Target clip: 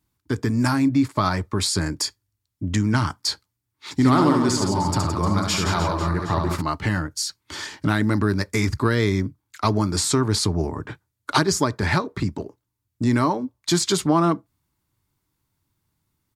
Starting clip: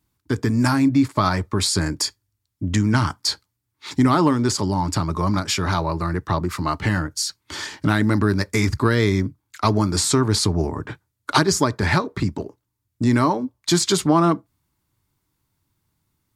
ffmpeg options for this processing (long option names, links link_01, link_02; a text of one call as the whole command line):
ffmpeg -i in.wav -filter_complex "[0:a]asplit=3[link_01][link_02][link_03];[link_01]afade=type=out:start_time=3.98:duration=0.02[link_04];[link_02]aecho=1:1:70|168|305.2|497.3|766.2:0.631|0.398|0.251|0.158|0.1,afade=type=in:start_time=3.98:duration=0.02,afade=type=out:start_time=6.6:duration=0.02[link_05];[link_03]afade=type=in:start_time=6.6:duration=0.02[link_06];[link_04][link_05][link_06]amix=inputs=3:normalize=0,volume=-2dB" out.wav